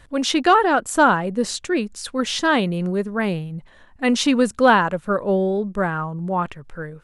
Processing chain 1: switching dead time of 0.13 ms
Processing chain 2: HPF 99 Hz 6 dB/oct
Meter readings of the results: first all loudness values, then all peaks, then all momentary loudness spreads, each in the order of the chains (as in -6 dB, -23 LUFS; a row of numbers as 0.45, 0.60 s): -20.5, -20.5 LUFS; -3.0, -3.0 dBFS; 12, 11 LU